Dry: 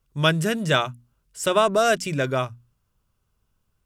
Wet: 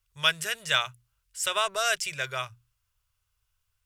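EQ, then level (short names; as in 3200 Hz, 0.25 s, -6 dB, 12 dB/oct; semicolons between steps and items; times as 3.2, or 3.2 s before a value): EQ curve 100 Hz 0 dB, 260 Hz -30 dB, 390 Hz -11 dB, 2100 Hz +7 dB; -6.5 dB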